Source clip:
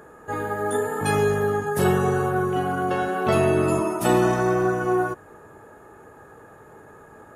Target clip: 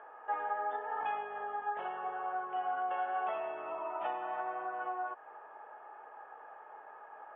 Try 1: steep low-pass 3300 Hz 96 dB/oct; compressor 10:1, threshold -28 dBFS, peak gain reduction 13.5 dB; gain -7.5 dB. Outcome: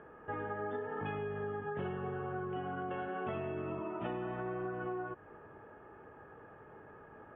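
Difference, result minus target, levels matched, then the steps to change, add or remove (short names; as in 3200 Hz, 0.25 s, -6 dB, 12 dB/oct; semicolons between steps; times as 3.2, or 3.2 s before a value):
1000 Hz band -5.5 dB
add after compressor: resonant high-pass 780 Hz, resonance Q 3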